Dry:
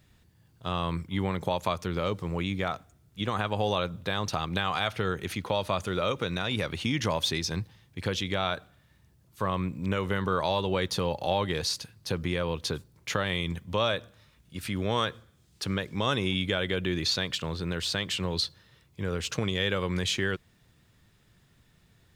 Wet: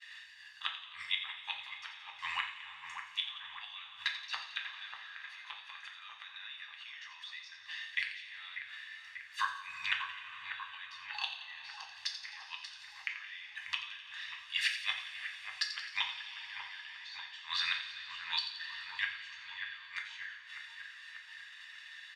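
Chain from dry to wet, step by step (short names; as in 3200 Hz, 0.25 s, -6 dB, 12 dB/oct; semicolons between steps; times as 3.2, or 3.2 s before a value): de-esser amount 70%; LPF 3100 Hz 12 dB/oct; expander -57 dBFS; inverse Chebyshev high-pass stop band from 590 Hz, stop band 50 dB; comb 1.1 ms, depth 69%; flipped gate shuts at -32 dBFS, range -34 dB; on a send: split-band echo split 2200 Hz, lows 0.591 s, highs 86 ms, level -10.5 dB; on the sum: two-slope reverb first 0.39 s, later 4.3 s, from -20 dB, DRR 0 dB; three-band squash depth 40%; gain +15 dB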